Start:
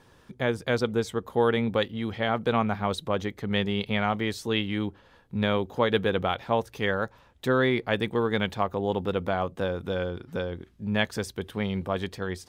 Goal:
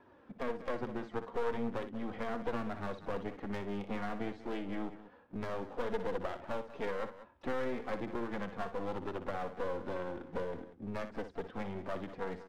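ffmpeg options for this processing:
-filter_complex "[0:a]highpass=f=300:p=1,acrossover=split=570|1800[a][b][c];[a]acompressor=threshold=-34dB:ratio=4[d];[b]acompressor=threshold=-40dB:ratio=4[e];[c]acompressor=threshold=-45dB:ratio=4[f];[d][e][f]amix=inputs=3:normalize=0,flanger=delay=3:depth=1.4:regen=-10:speed=1.1:shape=triangular,adynamicsmooth=sensitivity=1:basefreq=1.4k,aeval=exprs='clip(val(0),-1,0.00398)':c=same,asplit=2[g][h];[h]asetrate=66075,aresample=44100,atempo=0.66742,volume=-17dB[i];[g][i]amix=inputs=2:normalize=0,aecho=1:1:60|190:0.299|0.178,volume=4.5dB"

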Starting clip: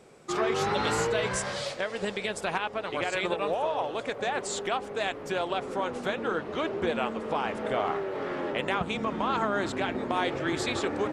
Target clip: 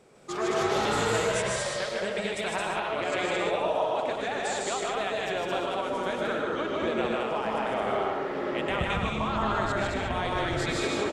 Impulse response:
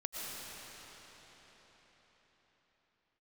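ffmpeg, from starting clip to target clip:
-filter_complex "[0:a]asplit=3[a][b][c];[a]afade=t=out:st=8.68:d=0.02[d];[b]asubboost=boost=8.5:cutoff=89,afade=t=in:st=8.68:d=0.02,afade=t=out:st=10.54:d=0.02[e];[c]afade=t=in:st=10.54:d=0.02[f];[d][e][f]amix=inputs=3:normalize=0,aecho=1:1:154.5|218.7:0.794|0.794[g];[1:a]atrim=start_sample=2205,atrim=end_sample=6615[h];[g][h]afir=irnorm=-1:irlink=0"

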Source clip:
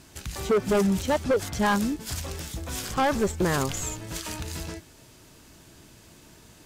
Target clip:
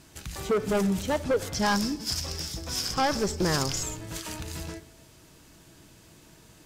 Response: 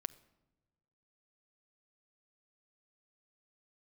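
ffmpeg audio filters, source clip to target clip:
-filter_complex "[0:a]asettb=1/sr,asplit=3[a][b][c];[a]atrim=end=1.544[d];[b]atrim=start=1.54:end=3.83,asetpts=PTS-STARTPTS,afade=t=in:d=0.004:c=qsin,afade=t=out:st=2.286:d=0.004:c=qsin,equalizer=f=5.2k:w=3.1:g=15[e];[c]atrim=start=3.826[f];[d][e]acrossfade=d=0.004:c1=hsin:c2=qsin[g];[g][f]acrossfade=d=0.004:c1=qsin:c2=hsin[h];[1:a]atrim=start_sample=2205[i];[h][i]afir=irnorm=-1:irlink=0"

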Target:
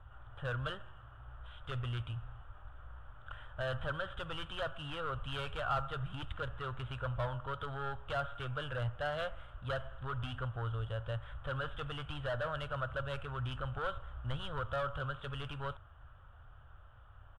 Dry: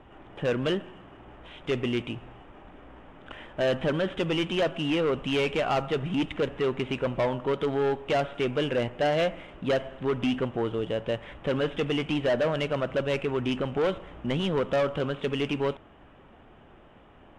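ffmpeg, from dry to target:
-af "firequalizer=gain_entry='entry(110,0);entry(180,-27);entry(360,-29);entry(540,-17);entry(860,-15);entry(1400,-2);entry(2100,-24);entry(3300,-11);entry(5700,-23);entry(8600,-13)':delay=0.05:min_phase=1,volume=3.5dB"

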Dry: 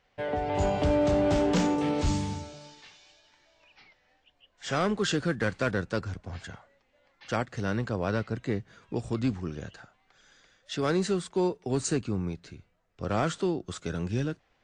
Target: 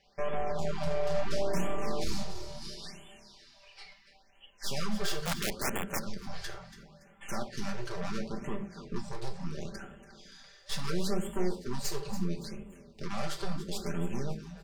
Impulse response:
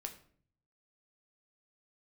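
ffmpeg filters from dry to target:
-filter_complex "[0:a]equalizer=f=4.8k:w=2.3:g=10.5,acompressor=threshold=-41dB:ratio=2,aeval=exprs='0.0631*(cos(1*acos(clip(val(0)/0.0631,-1,1)))-cos(1*PI/2))+0.0112*(cos(4*acos(clip(val(0)/0.0631,-1,1)))-cos(4*PI/2))+0.00562*(cos(5*acos(clip(val(0)/0.0631,-1,1)))-cos(5*PI/2))+0.0224*(cos(6*acos(clip(val(0)/0.0631,-1,1)))-cos(6*PI/2))':c=same,asettb=1/sr,asplit=3[a][b][c];[a]atrim=end=2.224[d];[b]atrim=start=2.22:end=2.62,asetpts=PTS-STARTPTS,afade=t=in:d=0.004:c=qsin,afade=t=out:st=0.396:d=0.004:c=qsin,acrossover=split=430[e][f];[f]acompressor=threshold=-48dB:ratio=3[g];[e][g]amix=inputs=2:normalize=0[h];[c]atrim=start=2.616[i];[d][h]acrossfade=d=0.004:c1=hsin:c2=qsin[j];[j][i]acrossfade=d=0.004:c1=qsin:c2=hsin,asplit=5[k][l][m][n][o];[l]adelay=284,afreqshift=35,volume=-12dB[p];[m]adelay=568,afreqshift=70,volume=-20.4dB[q];[n]adelay=852,afreqshift=105,volume=-28.8dB[r];[o]adelay=1136,afreqshift=140,volume=-37.2dB[s];[k][p][q][r][s]amix=inputs=5:normalize=0[t];[1:a]atrim=start_sample=2205,afade=t=out:st=0.18:d=0.01,atrim=end_sample=8379[u];[t][u]afir=irnorm=-1:irlink=0,asettb=1/sr,asplit=3[v][w][x];[v]atrim=end=0.524[y];[w]atrim=start=0.52:end=1.15,asetpts=PTS-STARTPTS,afade=t=in:d=0.004:c=qsin,afade=t=out:st=0.626:d=0.004:c=qsin,tremolo=f=160:d=0.571[z];[x]atrim=start=1.146[aa];[y][z]acrossfade=d=0.004:c1=hsin:c2=qsin[ab];[ab][aa]acrossfade=d=0.004:c1=qsin:c2=hsin,aecho=1:1:5.1:0.75,asplit=3[ac][ad][ae];[ac]afade=t=out:st=5.25:d=0.02[af];[ad]aeval=exprs='(mod(18.8*val(0)+1,2)-1)/18.8':c=same,afade=t=in:st=5.25:d=0.02,afade=t=out:st=5.98:d=0.02[ag];[ae]afade=t=in:st=5.98:d=0.02[ah];[af][ag][ah]amix=inputs=3:normalize=0,afftfilt=real='re*(1-between(b*sr/1024,220*pow(5000/220,0.5+0.5*sin(2*PI*0.73*pts/sr))/1.41,220*pow(5000/220,0.5+0.5*sin(2*PI*0.73*pts/sr))*1.41))':imag='im*(1-between(b*sr/1024,220*pow(5000/220,0.5+0.5*sin(2*PI*0.73*pts/sr))/1.41,220*pow(5000/220,0.5+0.5*sin(2*PI*0.73*pts/sr))*1.41))':win_size=1024:overlap=0.75"

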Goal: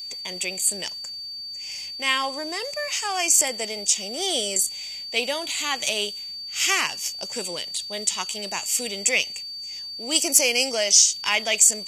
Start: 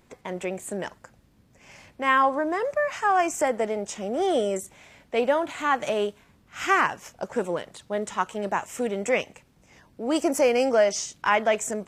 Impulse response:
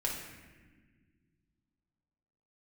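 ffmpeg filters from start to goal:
-af "aeval=exprs='val(0)+0.00398*sin(2*PI*4600*n/s)':c=same,aexciter=amount=13.1:drive=2.9:freq=2.3k,volume=-7dB"

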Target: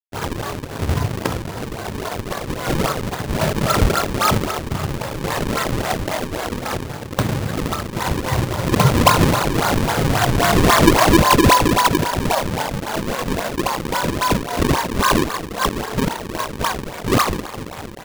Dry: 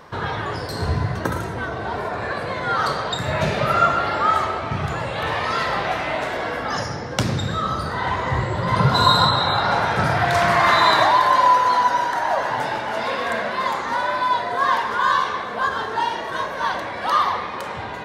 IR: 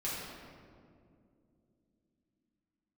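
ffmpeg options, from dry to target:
-af "lowpass=f=3.2k:w=0.5412,lowpass=f=3.2k:w=1.3066,aresample=11025,aeval=exprs='sgn(val(0))*max(abs(val(0))-0.0211,0)':c=same,aresample=44100,acrusher=samples=37:mix=1:aa=0.000001:lfo=1:lforange=59.2:lforate=3.7,volume=3.5dB"

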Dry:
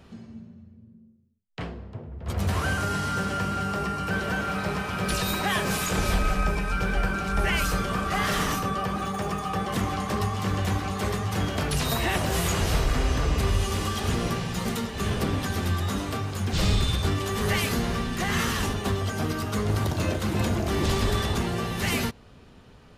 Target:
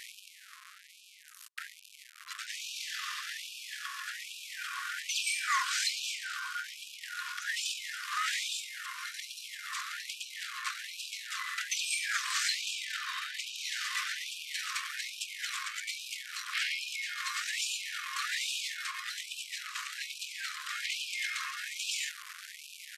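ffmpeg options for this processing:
-af "aeval=exprs='val(0)+0.5*0.0224*sgn(val(0))':c=same,asetrate=26990,aresample=44100,atempo=1.63392,afftfilt=real='re*gte(b*sr/1024,990*pow(2400/990,0.5+0.5*sin(2*PI*1.2*pts/sr)))':imag='im*gte(b*sr/1024,990*pow(2400/990,0.5+0.5*sin(2*PI*1.2*pts/sr)))':win_size=1024:overlap=0.75"

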